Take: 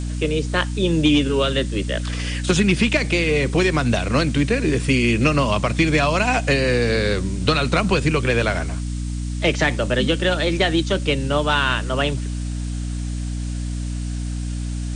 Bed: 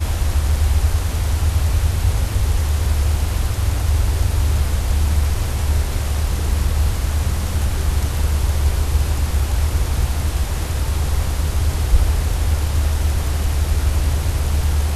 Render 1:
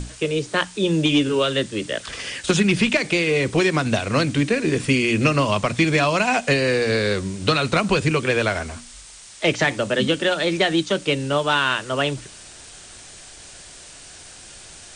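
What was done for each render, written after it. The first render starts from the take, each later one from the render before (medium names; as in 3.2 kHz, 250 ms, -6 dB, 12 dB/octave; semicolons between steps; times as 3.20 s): hum notches 60/120/180/240/300 Hz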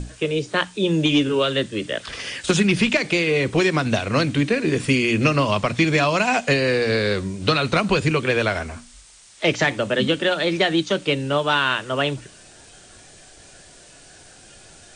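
noise print and reduce 6 dB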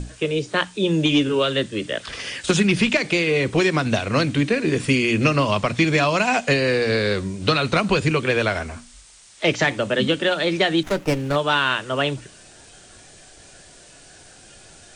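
10.83–11.36 s: sliding maximum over 9 samples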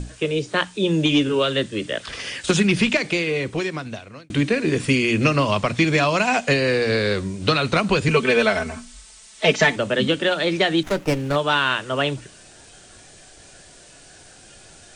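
2.88–4.30 s: fade out; 8.08–9.76 s: comb 4.6 ms, depth 95%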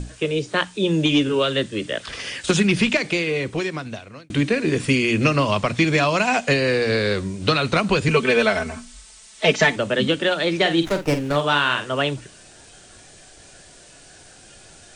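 10.56–11.89 s: doubling 48 ms -9 dB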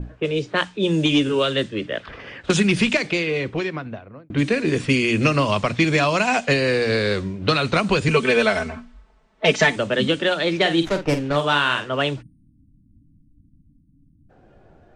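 12.22–14.30 s: spectral selection erased 320–8600 Hz; level-controlled noise filter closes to 760 Hz, open at -15 dBFS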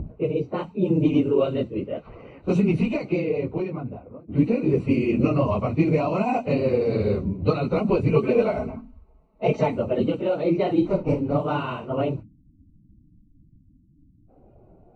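phase randomisation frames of 50 ms; boxcar filter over 26 samples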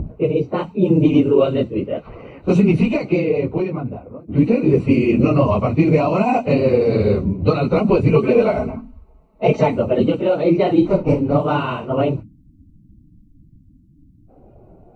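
trim +6.5 dB; peak limiter -3 dBFS, peak gain reduction 3 dB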